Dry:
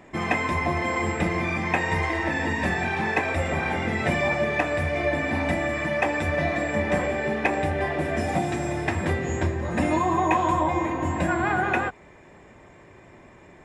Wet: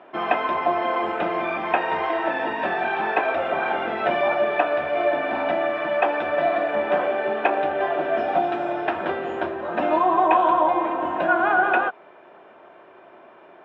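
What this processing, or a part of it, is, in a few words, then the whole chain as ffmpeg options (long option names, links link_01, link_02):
phone earpiece: -af "highpass=350,equalizer=frequency=370:width_type=q:width=4:gain=4,equalizer=frequency=670:width_type=q:width=4:gain=9,equalizer=frequency=960:width_type=q:width=4:gain=3,equalizer=frequency=1400:width_type=q:width=4:gain=10,equalizer=frequency=2000:width_type=q:width=4:gain=-9,equalizer=frequency=3100:width_type=q:width=4:gain=5,lowpass=frequency=3400:width=0.5412,lowpass=frequency=3400:width=1.3066"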